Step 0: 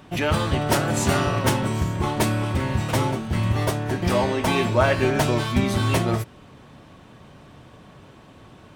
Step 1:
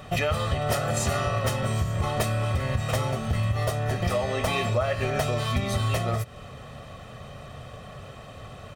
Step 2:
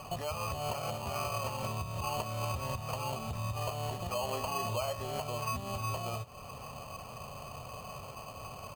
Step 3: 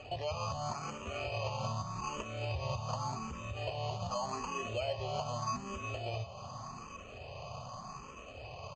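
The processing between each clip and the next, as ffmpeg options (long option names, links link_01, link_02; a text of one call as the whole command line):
ffmpeg -i in.wav -af "equalizer=frequency=180:width_type=o:width=0.45:gain=-4,aecho=1:1:1.6:0.72,acompressor=threshold=-27dB:ratio=6,volume=4dB" out.wav
ffmpeg -i in.wav -af "alimiter=limit=-22.5dB:level=0:latency=1:release=458,lowpass=frequency=1000:width_type=q:width=6,acrusher=samples=12:mix=1:aa=0.000001,volume=-6.5dB" out.wav
ffmpeg -i in.wav -filter_complex "[0:a]aecho=1:1:704|1408|2112|2816|3520:0.2|0.106|0.056|0.0297|0.0157,aresample=16000,aresample=44100,asplit=2[link_01][link_02];[link_02]afreqshift=0.84[link_03];[link_01][link_03]amix=inputs=2:normalize=1,volume=1dB" out.wav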